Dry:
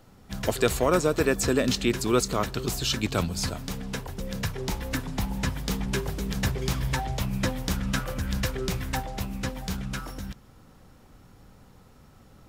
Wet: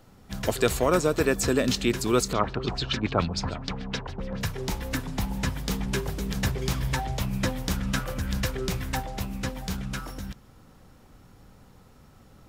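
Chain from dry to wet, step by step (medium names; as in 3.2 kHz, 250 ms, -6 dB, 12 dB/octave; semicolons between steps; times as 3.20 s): 2.33–4.41 s: LFO low-pass sine 6.9 Hz 820–5100 Hz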